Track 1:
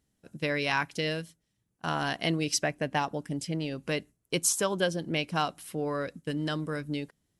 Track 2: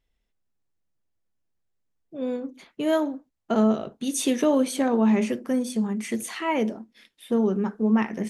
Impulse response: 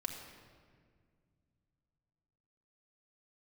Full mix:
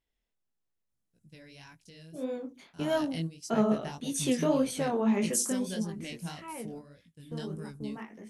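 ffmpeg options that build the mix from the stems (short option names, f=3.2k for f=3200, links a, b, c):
-filter_complex "[0:a]bass=f=250:g=14,treble=f=4k:g=14,bandreject=f=1.2k:w=6.7,adelay=900,volume=-12.5dB[a];[1:a]lowshelf=f=170:g=-5,volume=-2dB,afade=t=out:st=5.53:d=0.64:silence=0.266073,asplit=2[b][c];[c]apad=whole_len=365606[d];[a][d]sidechaingate=range=-11dB:threshold=-49dB:ratio=16:detection=peak[e];[e][b]amix=inputs=2:normalize=0,flanger=delay=17.5:depth=7.3:speed=1.7"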